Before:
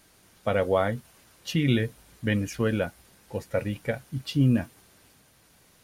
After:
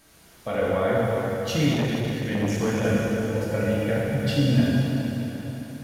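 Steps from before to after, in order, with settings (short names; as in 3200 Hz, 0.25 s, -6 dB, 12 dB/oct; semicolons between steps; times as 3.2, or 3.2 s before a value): limiter -19 dBFS, peak gain reduction 8.5 dB; plate-style reverb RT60 4.3 s, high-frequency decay 0.75×, DRR -7.5 dB; 1.73–2.85 core saturation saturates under 490 Hz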